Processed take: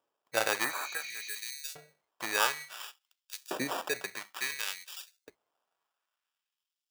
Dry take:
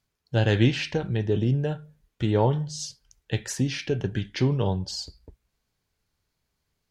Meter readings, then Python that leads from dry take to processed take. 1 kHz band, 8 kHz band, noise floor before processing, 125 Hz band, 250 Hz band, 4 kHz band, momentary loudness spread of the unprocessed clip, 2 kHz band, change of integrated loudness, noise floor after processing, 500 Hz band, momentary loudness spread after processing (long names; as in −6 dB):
−1.5 dB, +0.5 dB, −79 dBFS, −34.0 dB, −19.0 dB, −3.0 dB, 11 LU, +2.0 dB, −7.5 dB, below −85 dBFS, −11.5 dB, 17 LU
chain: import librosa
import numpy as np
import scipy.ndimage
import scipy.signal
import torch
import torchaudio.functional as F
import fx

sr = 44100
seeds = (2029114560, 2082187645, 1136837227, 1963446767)

y = fx.sample_hold(x, sr, seeds[0], rate_hz=2100.0, jitter_pct=0)
y = fx.spec_repair(y, sr, seeds[1], start_s=0.67, length_s=0.69, low_hz=2100.0, high_hz=7100.0, source='after')
y = fx.filter_lfo_highpass(y, sr, shape='saw_up', hz=0.57, low_hz=420.0, high_hz=5400.0, q=1.0)